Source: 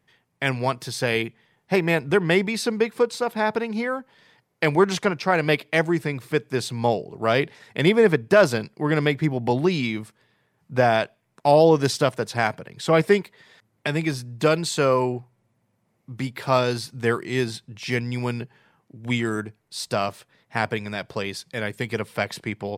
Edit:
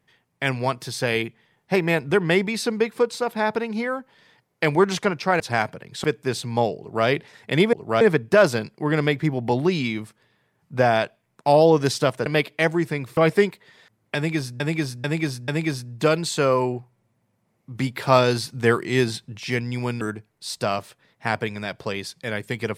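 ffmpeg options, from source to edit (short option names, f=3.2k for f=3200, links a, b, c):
-filter_complex "[0:a]asplit=13[a][b][c][d][e][f][g][h][i][j][k][l][m];[a]atrim=end=5.402[n];[b]atrim=start=12.248:end=12.892[o];[c]atrim=start=6.308:end=8.002[p];[d]atrim=start=7.058:end=7.342[q];[e]atrim=start=7.998:end=12.252[r];[f]atrim=start=5.398:end=6.312[s];[g]atrim=start=12.888:end=14.322[t];[h]atrim=start=13.878:end=14.322[u];[i]atrim=start=13.878:end=14.322[v];[j]atrim=start=13.878:end=16.152[w];[k]atrim=start=16.148:end=17.802,asetpts=PTS-STARTPTS,volume=3.5dB[x];[l]atrim=start=17.798:end=18.412[y];[m]atrim=start=19.308[z];[n][o]acrossfade=d=0.004:c1=hsin:c2=hsin[aa];[aa][p]acrossfade=d=0.004:c1=hsin:c2=hsin[ab];[ab][q]acrossfade=d=0.004:c1=hsin:c2=hsin[ac];[ac][r]acrossfade=d=0.004:c1=hsin:c2=hsin[ad];[ad][s]acrossfade=d=0.004:c1=hsin:c2=hsin[ae];[ae][t]acrossfade=d=0.004:c1=hsin:c2=hsin[af];[af][u]acrossfade=d=0.004:c1=hsin:c2=hsin[ag];[ag][v]acrossfade=d=0.004:c1=hsin:c2=hsin[ah];[ah][w]acrossfade=d=0.004:c1=hsin:c2=hsin[ai];[ai][x]acrossfade=d=0.004:c1=hsin:c2=hsin[aj];[aj][y]acrossfade=d=0.004:c1=hsin:c2=hsin[ak];[ak][z]acrossfade=d=0.004:c1=hsin:c2=hsin"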